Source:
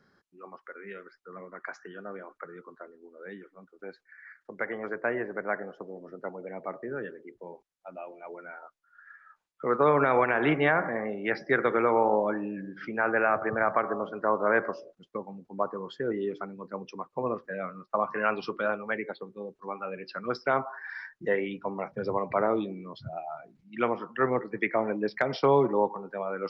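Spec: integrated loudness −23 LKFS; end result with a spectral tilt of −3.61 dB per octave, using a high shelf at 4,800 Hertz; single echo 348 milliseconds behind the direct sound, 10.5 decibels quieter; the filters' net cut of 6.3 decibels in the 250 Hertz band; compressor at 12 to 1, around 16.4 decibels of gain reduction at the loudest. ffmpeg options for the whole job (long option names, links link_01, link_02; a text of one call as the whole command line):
ffmpeg -i in.wav -af "equalizer=frequency=250:width_type=o:gain=-9,highshelf=frequency=4800:gain=-6,acompressor=threshold=-37dB:ratio=12,aecho=1:1:348:0.299,volume=20.5dB" out.wav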